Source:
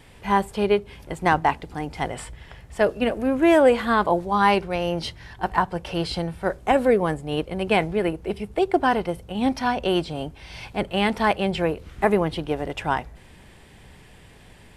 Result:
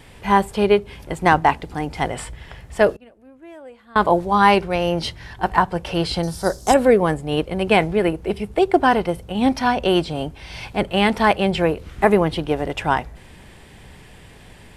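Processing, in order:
0:02.93–0:03.96: gate with flip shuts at −32 dBFS, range −29 dB
0:06.23–0:06.74: high shelf with overshoot 3,600 Hz +13.5 dB, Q 3
level +4.5 dB

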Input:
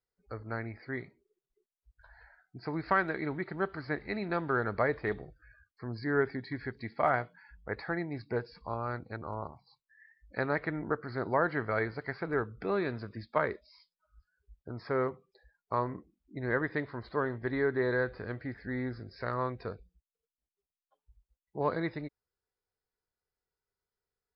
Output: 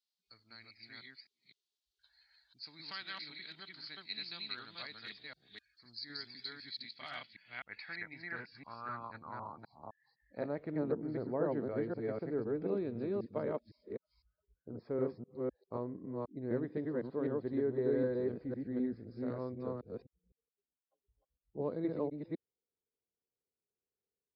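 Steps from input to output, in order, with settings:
delay that plays each chunk backwards 254 ms, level 0 dB
flat-topped bell 860 Hz −14.5 dB 2.8 octaves
band-pass filter sweep 4,000 Hz → 470 Hz, 0:06.81–0:10.79
level +10 dB

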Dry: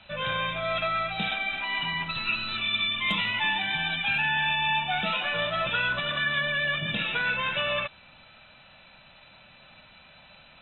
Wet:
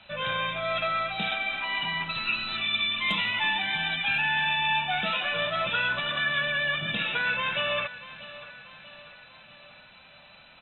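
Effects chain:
low-shelf EQ 150 Hz −5.5 dB
on a send: repeating echo 639 ms, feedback 53%, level −16.5 dB

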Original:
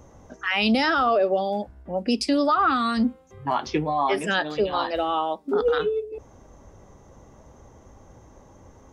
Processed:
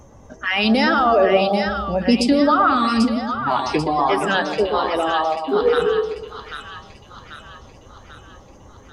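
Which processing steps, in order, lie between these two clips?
spectral magnitudes quantised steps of 15 dB
0:01.05–0:02.32: low-shelf EQ 220 Hz +8.5 dB
0:03.03–0:03.32: sound drawn into the spectrogram rise 440–1,000 Hz −35 dBFS
echo with a time of its own for lows and highs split 1,200 Hz, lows 121 ms, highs 790 ms, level −6 dB
level +4 dB

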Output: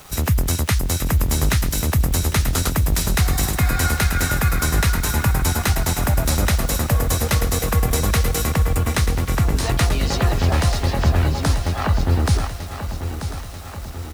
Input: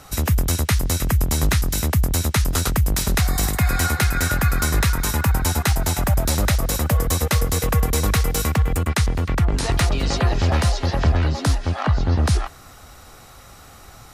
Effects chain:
bit reduction 7 bits
pitch-shifted copies added +7 semitones −16 dB
on a send: repeating echo 937 ms, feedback 58%, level −10 dB

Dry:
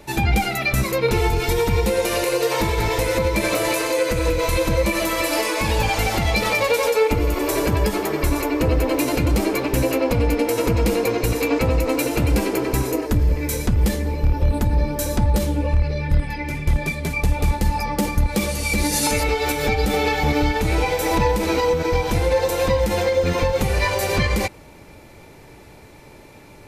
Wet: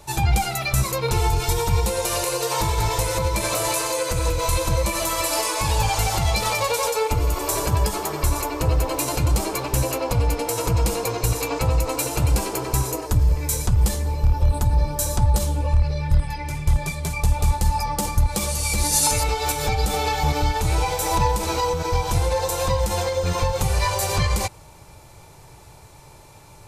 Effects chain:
graphic EQ with 10 bands 125 Hz +4 dB, 250 Hz −12 dB, 500 Hz −4 dB, 1,000 Hz +4 dB, 2,000 Hz −8 dB, 8,000 Hz +6 dB

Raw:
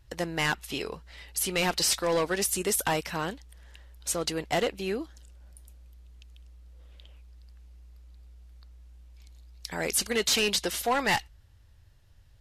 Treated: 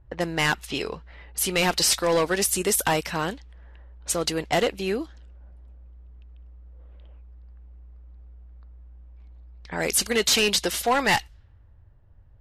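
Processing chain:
low-pass that shuts in the quiet parts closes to 940 Hz, open at −27.5 dBFS
level +4.5 dB

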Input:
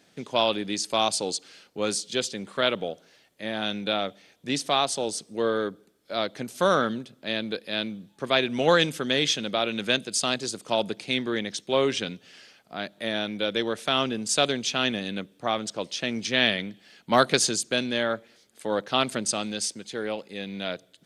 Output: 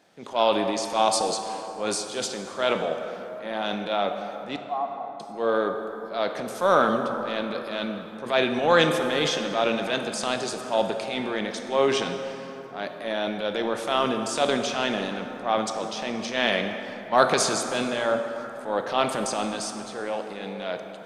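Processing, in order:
parametric band 820 Hz +11 dB 1.8 octaves
transient designer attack −7 dB, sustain +6 dB
0:04.56–0:05.20: formant resonators in series a
dense smooth reverb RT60 3.7 s, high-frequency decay 0.45×, DRR 5 dB
level −5 dB

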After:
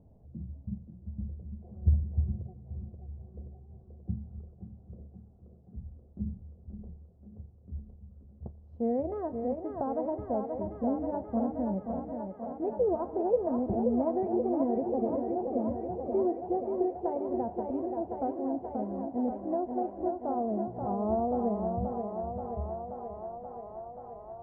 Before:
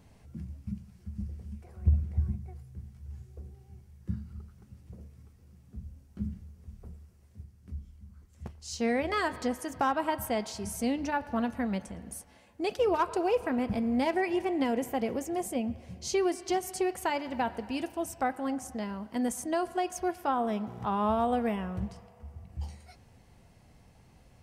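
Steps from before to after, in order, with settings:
Chebyshev low-pass filter 660 Hz, order 3
feedback echo with a high-pass in the loop 530 ms, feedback 85%, high-pass 280 Hz, level −4 dB

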